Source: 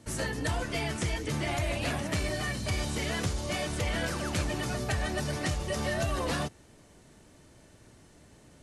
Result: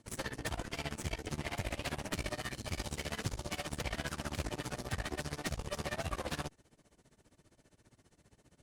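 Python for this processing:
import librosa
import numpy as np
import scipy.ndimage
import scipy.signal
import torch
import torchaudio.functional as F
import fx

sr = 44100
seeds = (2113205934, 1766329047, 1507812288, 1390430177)

y = fx.cheby_harmonics(x, sr, harmonics=(6,), levels_db=(-12,), full_scale_db=-18.0)
y = y * (1.0 - 0.91 / 2.0 + 0.91 / 2.0 * np.cos(2.0 * np.pi * 15.0 * (np.arange(len(y)) / sr)))
y = y * librosa.db_to_amplitude(-6.0)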